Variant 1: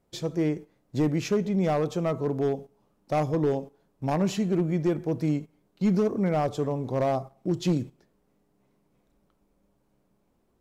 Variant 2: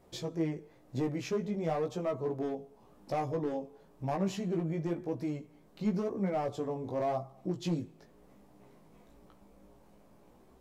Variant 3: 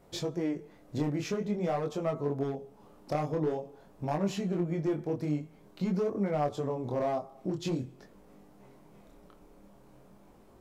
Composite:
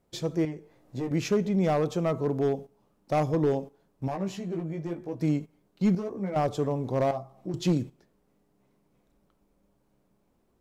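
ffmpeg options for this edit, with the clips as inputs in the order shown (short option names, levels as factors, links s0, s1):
-filter_complex "[1:a]asplit=4[s0][s1][s2][s3];[0:a]asplit=5[s4][s5][s6][s7][s8];[s4]atrim=end=0.452[s9];[s0]atrim=start=0.448:end=1.112[s10];[s5]atrim=start=1.108:end=4.082[s11];[s1]atrim=start=4.078:end=5.212[s12];[s6]atrim=start=5.208:end=5.952[s13];[s2]atrim=start=5.948:end=6.362[s14];[s7]atrim=start=6.358:end=7.112[s15];[s3]atrim=start=7.108:end=7.542[s16];[s8]atrim=start=7.538[s17];[s9][s10]acrossfade=d=0.004:c1=hsin:c2=hsin[s18];[s18][s11]acrossfade=d=0.004:c1=hsin:c2=hsin[s19];[s19][s12]acrossfade=d=0.004:c1=hsin:c2=hsin[s20];[s20][s13]acrossfade=d=0.004:c1=hsin:c2=hsin[s21];[s21][s14]acrossfade=d=0.004:c1=hsin:c2=hsin[s22];[s22][s15]acrossfade=d=0.004:c1=hsin:c2=hsin[s23];[s23][s16]acrossfade=d=0.004:c1=hsin:c2=hsin[s24];[s24][s17]acrossfade=d=0.004:c1=hsin:c2=hsin"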